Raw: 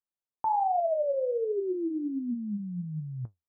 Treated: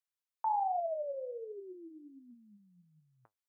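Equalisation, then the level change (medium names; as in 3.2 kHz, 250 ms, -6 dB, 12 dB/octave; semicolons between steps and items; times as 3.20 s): high-pass 1 kHz 12 dB/octave; 0.0 dB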